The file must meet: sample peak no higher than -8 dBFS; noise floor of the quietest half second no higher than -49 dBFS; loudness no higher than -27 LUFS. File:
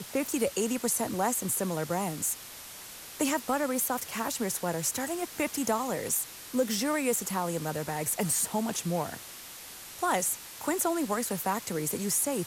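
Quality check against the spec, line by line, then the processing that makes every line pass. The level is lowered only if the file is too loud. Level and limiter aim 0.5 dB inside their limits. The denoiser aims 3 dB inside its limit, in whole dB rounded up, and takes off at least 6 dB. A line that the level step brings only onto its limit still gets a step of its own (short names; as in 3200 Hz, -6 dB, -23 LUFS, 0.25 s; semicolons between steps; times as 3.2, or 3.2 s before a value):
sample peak -16.0 dBFS: OK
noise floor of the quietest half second -45 dBFS: fail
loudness -30.0 LUFS: OK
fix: denoiser 7 dB, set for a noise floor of -45 dBFS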